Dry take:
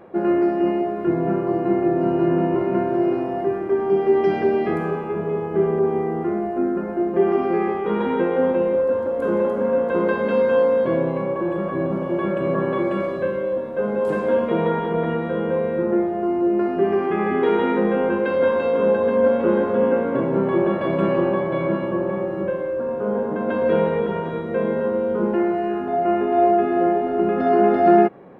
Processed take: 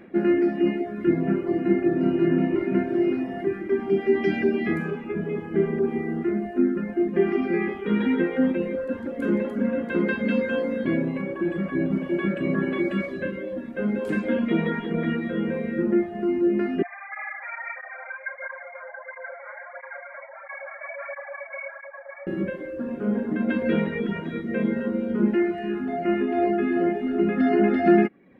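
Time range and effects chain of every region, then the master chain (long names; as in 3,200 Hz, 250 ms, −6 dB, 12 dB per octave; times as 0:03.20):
0:16.82–0:22.27: linear-phase brick-wall band-pass 540–2,400 Hz + through-zero flanger with one copy inverted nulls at 1.5 Hz, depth 5.5 ms
whole clip: reverb reduction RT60 0.84 s; octave-band graphic EQ 125/250/500/1,000/2,000 Hz −5/+9/−7/−12/+9 dB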